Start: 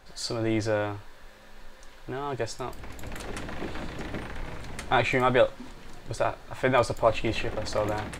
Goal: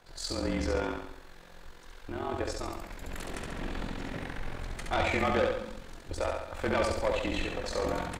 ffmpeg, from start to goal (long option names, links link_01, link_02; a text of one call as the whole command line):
ffmpeg -i in.wav -af "afreqshift=-36,tremolo=f=44:d=0.621,asoftclip=type=tanh:threshold=-21.5dB,aecho=1:1:69|138|207|276|345|414|483:0.708|0.368|0.191|0.0995|0.0518|0.0269|0.014,volume=-1dB" out.wav